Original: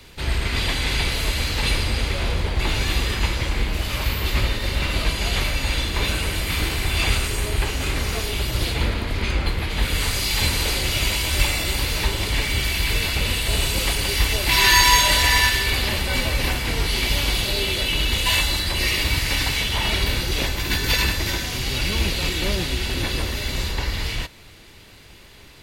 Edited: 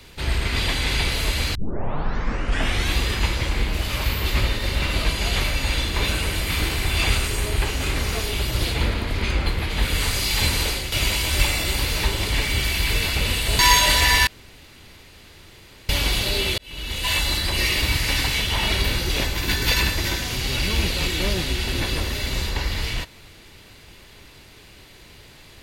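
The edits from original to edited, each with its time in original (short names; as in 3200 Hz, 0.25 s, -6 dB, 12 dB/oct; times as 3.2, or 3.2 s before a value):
1.55 tape start 1.42 s
10.62–10.92 fade out, to -9 dB
13.59–14.81 cut
15.49–17.11 room tone
17.8–18.55 fade in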